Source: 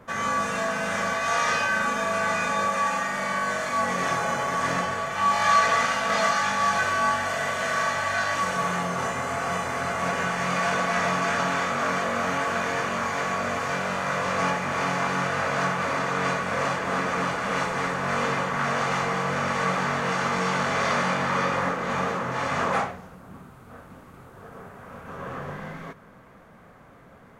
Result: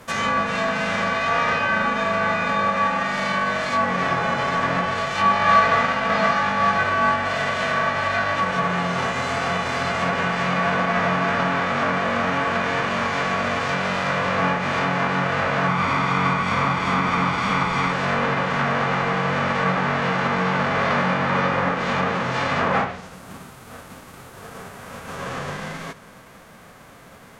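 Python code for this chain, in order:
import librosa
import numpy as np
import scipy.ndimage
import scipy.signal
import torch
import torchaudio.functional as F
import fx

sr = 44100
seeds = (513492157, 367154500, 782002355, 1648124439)

y = fx.envelope_flatten(x, sr, power=0.6)
y = fx.env_lowpass_down(y, sr, base_hz=2100.0, full_db=-21.5)
y = fx.comb(y, sr, ms=0.9, depth=0.5, at=(15.68, 17.92))
y = y * librosa.db_to_amplitude(5.0)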